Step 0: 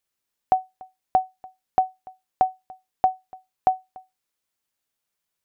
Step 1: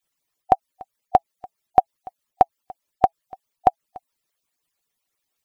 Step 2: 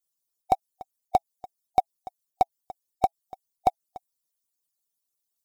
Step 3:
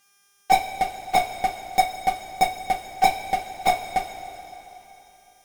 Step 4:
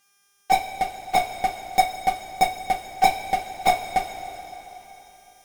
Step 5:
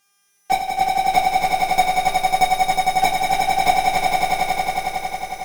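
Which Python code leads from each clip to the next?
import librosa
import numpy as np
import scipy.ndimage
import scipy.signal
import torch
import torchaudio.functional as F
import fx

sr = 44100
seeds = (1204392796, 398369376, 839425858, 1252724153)

y1 = fx.hpss_only(x, sr, part='percussive')
y1 = fx.notch(y1, sr, hz=1500.0, q=12.0)
y1 = F.gain(torch.from_numpy(y1), 7.5).numpy()
y2 = fx.high_shelf(y1, sr, hz=2800.0, db=10.5)
y2 = fx.leveller(y2, sr, passes=2)
y2 = fx.peak_eq(y2, sr, hz=2100.0, db=-13.5, octaves=1.4)
y2 = F.gain(torch.from_numpy(y2), -7.5).numpy()
y3 = fx.dmg_buzz(y2, sr, base_hz=400.0, harmonics=8, level_db=-55.0, tilt_db=-4, odd_only=False)
y3 = fx.fuzz(y3, sr, gain_db=39.0, gate_db=-48.0)
y3 = fx.rev_double_slope(y3, sr, seeds[0], early_s=0.22, late_s=3.4, knee_db=-18, drr_db=-3.5)
y3 = F.gain(torch.from_numpy(y3), -5.0).numpy()
y4 = fx.rider(y3, sr, range_db=3, speed_s=2.0)
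y5 = fx.echo_swell(y4, sr, ms=91, loudest=5, wet_db=-4)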